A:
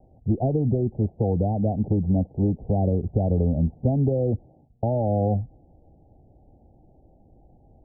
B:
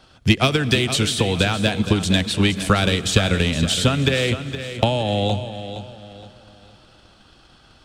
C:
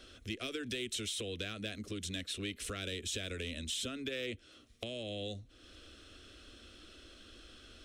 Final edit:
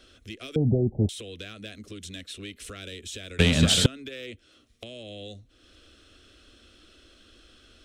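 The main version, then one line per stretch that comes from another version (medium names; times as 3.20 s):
C
0.56–1.09 s: from A
3.39–3.86 s: from B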